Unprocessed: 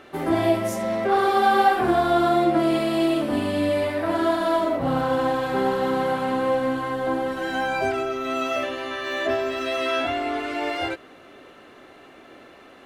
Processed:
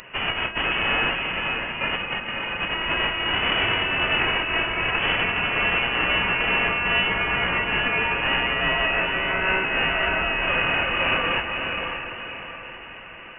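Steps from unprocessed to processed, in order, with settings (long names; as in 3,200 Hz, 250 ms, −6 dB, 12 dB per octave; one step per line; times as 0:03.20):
each half-wave held at its own peak
high-pass filter 82 Hz
spectral tilt +4 dB per octave
compressor whose output falls as the input rises −18 dBFS, ratio −0.5
on a send: feedback delay with all-pass diffusion 531 ms, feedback 45%, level −4.5 dB
on the sum: wrong playback speed 25 fps video run at 24 fps
voice inversion scrambler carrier 3,200 Hz
level −2 dB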